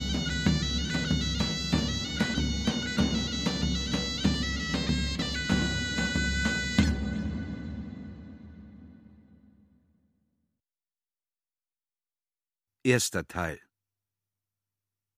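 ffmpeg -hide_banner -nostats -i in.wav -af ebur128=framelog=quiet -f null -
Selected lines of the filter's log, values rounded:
Integrated loudness:
  I:         -28.8 LUFS
  Threshold: -39.8 LUFS
Loudness range:
  LRA:        12.4 LU
  Threshold: -51.0 LUFS
  LRA low:   -40.7 LUFS
  LRA high:  -28.4 LUFS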